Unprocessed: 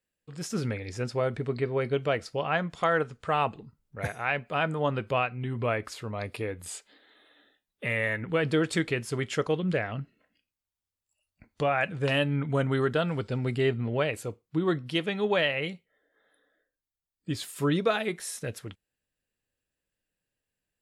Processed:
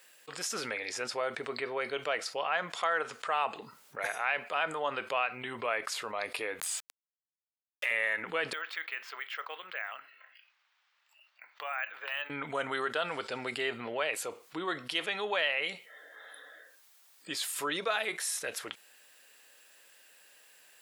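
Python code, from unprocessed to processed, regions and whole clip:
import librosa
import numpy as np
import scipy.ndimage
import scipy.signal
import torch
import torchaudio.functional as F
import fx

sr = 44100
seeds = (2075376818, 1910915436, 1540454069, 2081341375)

y = fx.chain(x, sr, fx.highpass(hz=730.0, slope=12),
    fx.sample_gate(floor_db=-49.0),
    fx.pre_swell(db_per_s=47.0), at=(6.6, 7.91))
y = fx.chain(y, sr, fx.highpass(hz=1500.0, slope=12),
    fx.spacing_loss(db_at_10k=42),
    fx.resample_bad(factor=2, down='filtered', up='hold'), at=(8.53, 12.3))
y = scipy.signal.sosfilt(scipy.signal.butter(2, 740.0, 'highpass', fs=sr, output='sos'), y)
y = fx.env_flatten(y, sr, amount_pct=50)
y = y * librosa.db_to_amplitude(-3.0)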